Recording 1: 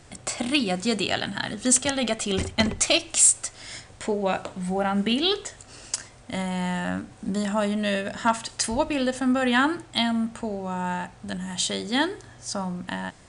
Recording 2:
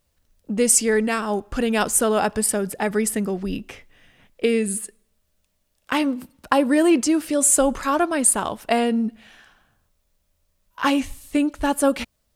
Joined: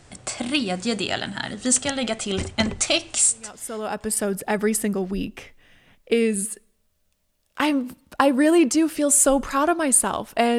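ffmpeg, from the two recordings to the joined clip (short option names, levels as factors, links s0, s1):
-filter_complex "[0:a]apad=whole_dur=10.58,atrim=end=10.58,atrim=end=4.32,asetpts=PTS-STARTPTS[s0];[1:a]atrim=start=1.46:end=8.9,asetpts=PTS-STARTPTS[s1];[s0][s1]acrossfade=d=1.18:c1=qua:c2=qua"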